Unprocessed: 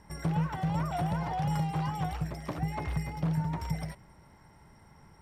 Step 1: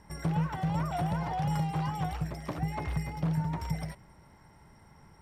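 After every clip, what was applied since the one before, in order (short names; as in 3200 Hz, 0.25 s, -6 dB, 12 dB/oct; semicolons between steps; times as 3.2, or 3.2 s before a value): nothing audible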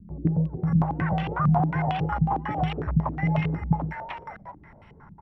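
bands offset in time lows, highs 0.57 s, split 510 Hz; stepped low-pass 11 Hz 210–2800 Hz; gain +5 dB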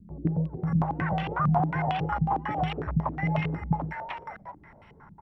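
low shelf 260 Hz -5 dB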